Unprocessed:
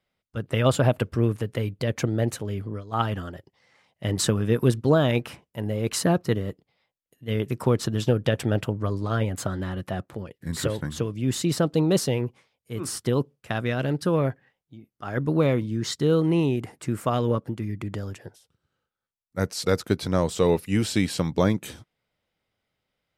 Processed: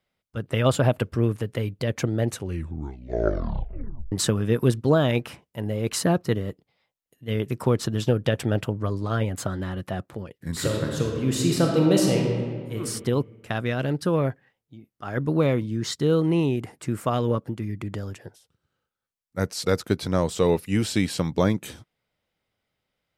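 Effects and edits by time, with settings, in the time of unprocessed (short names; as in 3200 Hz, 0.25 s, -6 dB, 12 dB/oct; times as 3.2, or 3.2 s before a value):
2.29 tape stop 1.83 s
10.52–12.79 reverb throw, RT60 1.8 s, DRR 0 dB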